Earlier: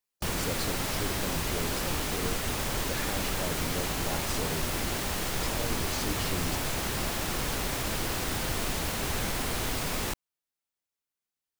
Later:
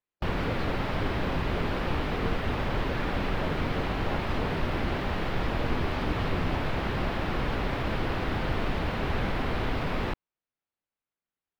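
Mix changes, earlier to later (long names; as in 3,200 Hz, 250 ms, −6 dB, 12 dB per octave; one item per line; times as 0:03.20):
background +4.5 dB
master: add high-frequency loss of the air 380 metres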